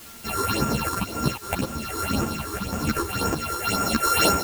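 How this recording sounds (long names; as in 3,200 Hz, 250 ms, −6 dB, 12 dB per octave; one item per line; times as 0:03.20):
a buzz of ramps at a fixed pitch in blocks of 32 samples
phaser sweep stages 6, 1.9 Hz, lowest notch 170–4,100 Hz
a quantiser's noise floor 8 bits, dither triangular
a shimmering, thickened sound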